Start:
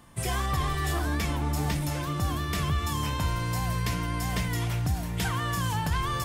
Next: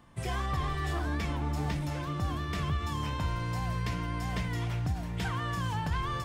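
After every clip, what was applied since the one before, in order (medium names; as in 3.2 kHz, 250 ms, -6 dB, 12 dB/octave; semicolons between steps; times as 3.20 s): peaking EQ 13 kHz -14 dB 1.4 oct; endings held to a fixed fall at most 180 dB/s; trim -3.5 dB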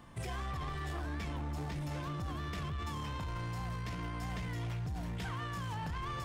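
peak limiter -32 dBFS, peak gain reduction 10.5 dB; saturation -36 dBFS, distortion -17 dB; trim +3 dB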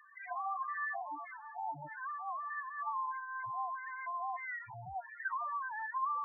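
LFO band-pass square 1.6 Hz 850–1700 Hz; loudest bins only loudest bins 4; trim +13 dB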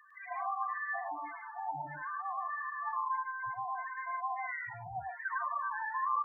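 loudspeakers at several distances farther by 36 m -2 dB, 50 m -9 dB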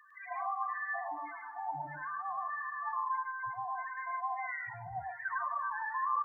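plate-style reverb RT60 3.5 s, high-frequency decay 0.9×, DRR 19.5 dB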